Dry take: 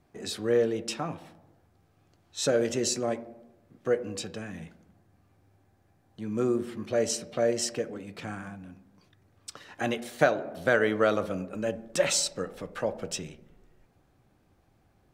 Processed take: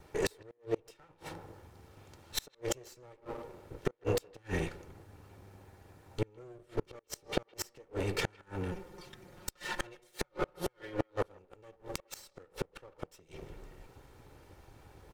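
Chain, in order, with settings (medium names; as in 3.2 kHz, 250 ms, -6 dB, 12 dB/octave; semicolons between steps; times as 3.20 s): comb filter that takes the minimum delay 2.2 ms; inverted gate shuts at -17 dBFS, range -30 dB; 8.71–11.10 s: comb 5.6 ms, depth 86%; inverted gate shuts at -30 dBFS, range -35 dB; speakerphone echo 160 ms, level -26 dB; trim +11 dB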